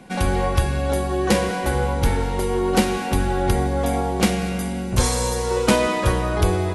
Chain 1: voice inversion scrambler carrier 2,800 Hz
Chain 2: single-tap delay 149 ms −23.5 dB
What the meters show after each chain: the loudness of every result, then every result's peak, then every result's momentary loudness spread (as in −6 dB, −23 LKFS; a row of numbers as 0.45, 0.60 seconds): −17.0, −21.5 LKFS; −3.0, −3.5 dBFS; 3, 4 LU